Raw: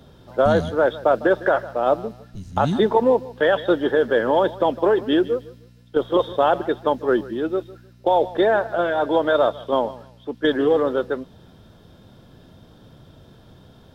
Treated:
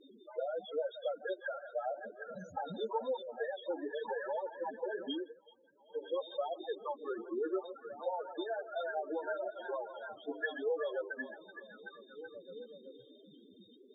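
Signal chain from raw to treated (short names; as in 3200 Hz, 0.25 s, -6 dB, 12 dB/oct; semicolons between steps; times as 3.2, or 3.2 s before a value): gate with hold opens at -39 dBFS; HPF 73 Hz 12 dB/oct; tilt +4.5 dB/oct; notches 50/100/150/200/250/300/350/400 Hz; compressor 16:1, threshold -31 dBFS, peak gain reduction 17.5 dB; flange 0.92 Hz, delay 1.5 ms, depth 9.4 ms, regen -14%; band noise 190–490 Hz -60 dBFS; loudest bins only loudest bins 4; air absorption 130 m; delay with a stepping band-pass 0.379 s, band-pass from 3000 Hz, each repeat -0.7 oct, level -3 dB; 4.04–4.47 three-band squash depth 70%; 5.12–6.1 dip -18.5 dB, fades 0.23 s; gain +4 dB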